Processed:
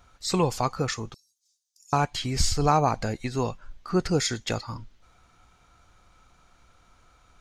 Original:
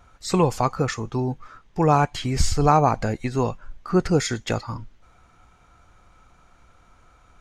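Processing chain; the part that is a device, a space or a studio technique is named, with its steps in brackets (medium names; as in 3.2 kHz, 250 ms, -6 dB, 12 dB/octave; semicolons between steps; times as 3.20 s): 1.14–1.93 s: inverse Chebyshev high-pass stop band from 1.4 kHz, stop band 70 dB; presence and air boost (peaking EQ 4.3 kHz +6 dB 1.2 oct; treble shelf 9 kHz +6.5 dB); trim -4.5 dB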